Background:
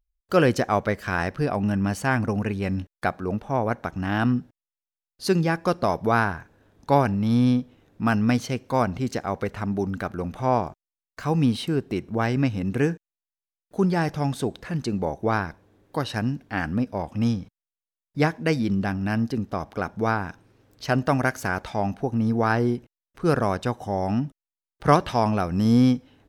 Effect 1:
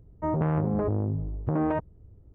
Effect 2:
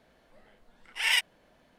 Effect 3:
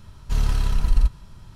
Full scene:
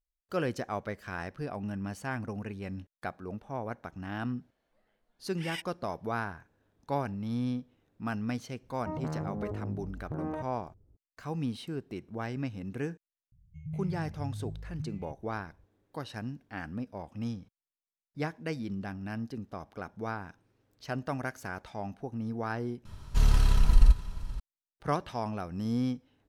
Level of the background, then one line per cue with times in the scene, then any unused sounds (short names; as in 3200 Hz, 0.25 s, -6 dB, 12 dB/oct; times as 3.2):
background -12.5 dB
4.41 add 2 -15 dB
8.63 add 1 -10 dB
13.32 add 1 -9.5 dB + brick-wall FIR band-stop 190–2000 Hz
22.85 replace with 3 -1.5 dB + echo 0.476 s -18 dB